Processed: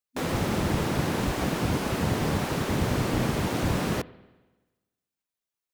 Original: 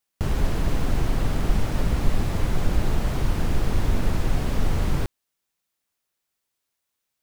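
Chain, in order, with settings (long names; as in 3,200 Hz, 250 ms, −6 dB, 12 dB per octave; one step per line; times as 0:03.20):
speed change +26%
gate on every frequency bin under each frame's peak −10 dB weak
spring reverb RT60 1.2 s, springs 48/52 ms, chirp 30 ms, DRR 19 dB
level +2.5 dB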